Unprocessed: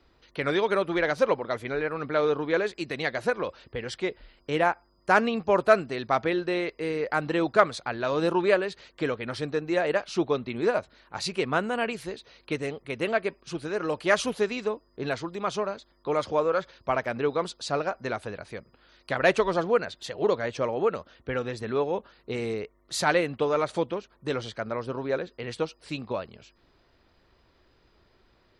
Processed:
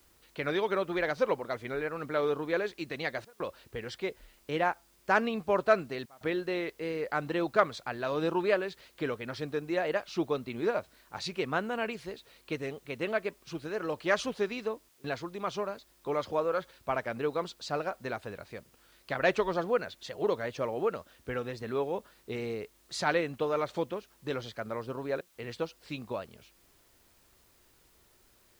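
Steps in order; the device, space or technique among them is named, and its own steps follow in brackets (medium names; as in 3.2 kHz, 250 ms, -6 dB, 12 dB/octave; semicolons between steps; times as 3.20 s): worn cassette (low-pass 6.8 kHz; wow and flutter; level dips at 3.25/6.06/14.89/25.21 s, 148 ms -27 dB; white noise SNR 33 dB); trim -5 dB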